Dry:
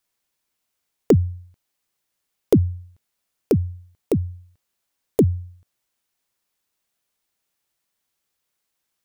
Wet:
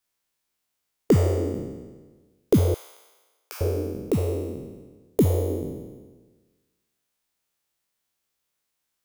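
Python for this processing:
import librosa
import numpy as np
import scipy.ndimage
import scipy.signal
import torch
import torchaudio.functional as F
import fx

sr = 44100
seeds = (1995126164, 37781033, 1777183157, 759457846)

y = fx.spec_trails(x, sr, decay_s=1.34)
y = fx.highpass(y, sr, hz=1000.0, slope=24, at=(2.74, 3.61))
y = y * 10.0 ** (-4.5 / 20.0)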